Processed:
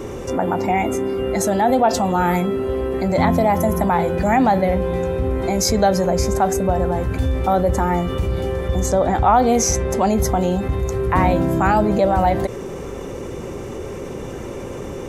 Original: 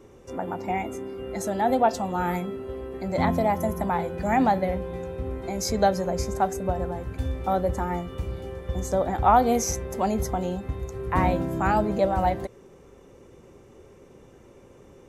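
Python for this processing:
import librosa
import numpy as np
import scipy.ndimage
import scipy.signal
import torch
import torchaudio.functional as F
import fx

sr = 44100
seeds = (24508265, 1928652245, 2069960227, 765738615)

y = fx.lowpass(x, sr, hz=9900.0, slope=12, at=(8.86, 10.13))
y = fx.env_flatten(y, sr, amount_pct=50)
y = y * librosa.db_to_amplitude(3.0)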